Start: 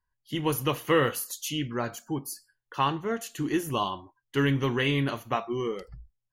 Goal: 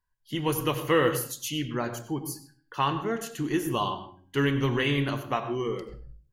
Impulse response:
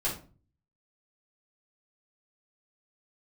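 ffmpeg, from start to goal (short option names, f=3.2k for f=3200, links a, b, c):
-filter_complex "[0:a]bandreject=f=270.9:t=h:w=4,bandreject=f=541.8:t=h:w=4,bandreject=f=812.7:t=h:w=4,bandreject=f=1.0836k:t=h:w=4,bandreject=f=1.3545k:t=h:w=4,bandreject=f=1.6254k:t=h:w=4,bandreject=f=1.8963k:t=h:w=4,bandreject=f=2.1672k:t=h:w=4,bandreject=f=2.4381k:t=h:w=4,bandreject=f=2.709k:t=h:w=4,bandreject=f=2.9799k:t=h:w=4,bandreject=f=3.2508k:t=h:w=4,bandreject=f=3.5217k:t=h:w=4,bandreject=f=3.7926k:t=h:w=4,bandreject=f=4.0635k:t=h:w=4,bandreject=f=4.3344k:t=h:w=4,bandreject=f=4.6053k:t=h:w=4,bandreject=f=4.8762k:t=h:w=4,bandreject=f=5.1471k:t=h:w=4,asplit=2[a][b];[1:a]atrim=start_sample=2205,highshelf=f=9.3k:g=-10.5,adelay=88[c];[b][c]afir=irnorm=-1:irlink=0,volume=-16.5dB[d];[a][d]amix=inputs=2:normalize=0"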